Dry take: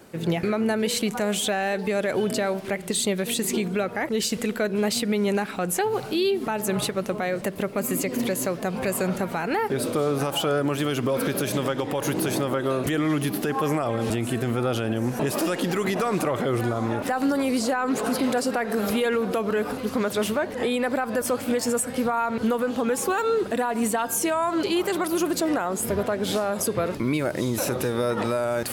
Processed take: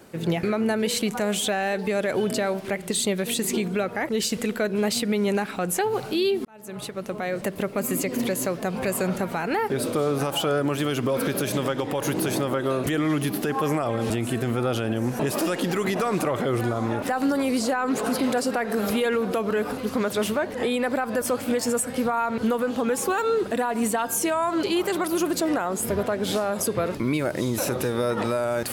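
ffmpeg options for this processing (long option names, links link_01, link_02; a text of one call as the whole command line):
ffmpeg -i in.wav -filter_complex "[0:a]asplit=2[link_01][link_02];[link_01]atrim=end=6.45,asetpts=PTS-STARTPTS,afade=type=out:start_time=6.446:duration=0.004:curve=hsin[link_03];[link_02]atrim=start=6.45,asetpts=PTS-STARTPTS,afade=type=in:duration=1.01[link_04];[link_03][link_04]concat=n=2:v=0:a=1" out.wav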